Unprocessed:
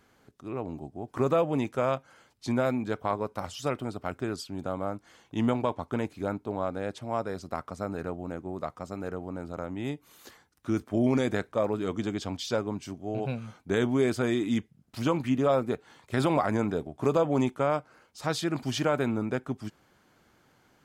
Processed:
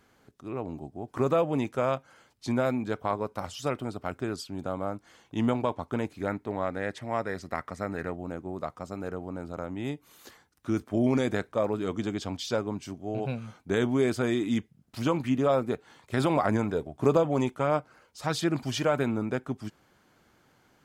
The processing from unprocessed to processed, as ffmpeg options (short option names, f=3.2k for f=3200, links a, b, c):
-filter_complex "[0:a]asettb=1/sr,asplit=3[a][b][c];[a]atrim=end=6.214[d];[b]atrim=start=6.21:end=8.16,asetpts=PTS-STARTPTS,afade=t=in:d=0.004:c=qsin,afade=t=out:st=1.946:d=0.004:c=qsin,equalizer=f=1.9k:t=o:w=0.39:g=14[e];[c]atrim=start=8.156[f];[d][e]acrossfade=d=0.004:c1=hsin:c2=qsin[g];[g][f]acrossfade=d=0.004:c1=qsin:c2=hsin,asettb=1/sr,asplit=3[h][i][j];[h]atrim=end=16.454[k];[i]atrim=start=16.45:end=19.03,asetpts=PTS-STARTPTS,afade=t=in:d=0.004:c=qsin,afade=t=out:st=2.576:d=0.004:c=qsin,aphaser=in_gain=1:out_gain=1:delay=2.1:decay=0.29:speed=1.5:type=sinusoidal[l];[j]atrim=start=19.026[m];[k][l]acrossfade=d=0.004:c1=hsin:c2=qsin[n];[n][m]acrossfade=d=0.004:c1=qsin:c2=hsin"